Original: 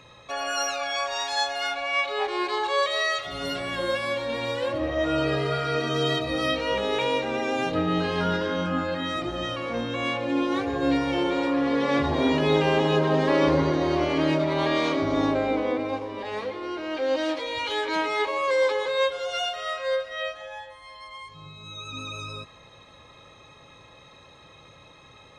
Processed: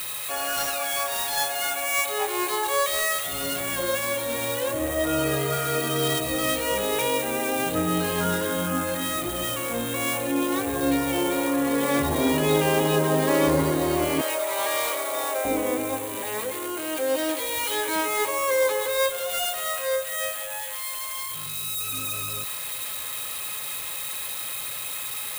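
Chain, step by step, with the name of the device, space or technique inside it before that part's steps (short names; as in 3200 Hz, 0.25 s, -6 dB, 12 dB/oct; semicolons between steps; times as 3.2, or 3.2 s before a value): 14.21–15.45 inverse Chebyshev high-pass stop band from 150 Hz, stop band 60 dB; budget class-D amplifier (switching dead time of 0.1 ms; switching spikes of -18 dBFS)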